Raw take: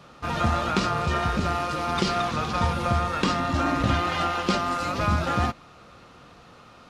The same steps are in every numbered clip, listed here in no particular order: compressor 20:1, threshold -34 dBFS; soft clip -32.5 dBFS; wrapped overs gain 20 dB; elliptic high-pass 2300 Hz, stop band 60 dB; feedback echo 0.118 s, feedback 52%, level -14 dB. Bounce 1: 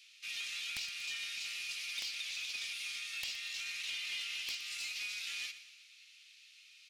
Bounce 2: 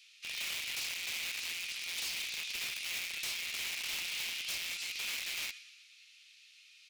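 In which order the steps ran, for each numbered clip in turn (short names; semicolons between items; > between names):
elliptic high-pass > wrapped overs > compressor > soft clip > feedback echo; feedback echo > wrapped overs > elliptic high-pass > soft clip > compressor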